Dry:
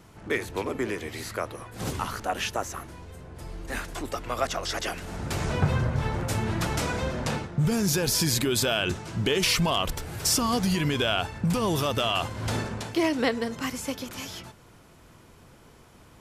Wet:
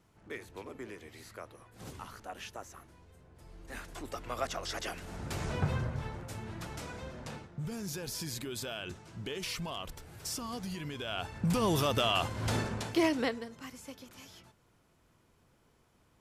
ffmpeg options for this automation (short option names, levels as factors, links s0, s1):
-af "volume=1.58,afade=t=in:st=3.43:d=0.85:silence=0.421697,afade=t=out:st=5.73:d=0.5:silence=0.446684,afade=t=in:st=11.04:d=0.57:silence=0.266073,afade=t=out:st=13.04:d=0.43:silence=0.251189"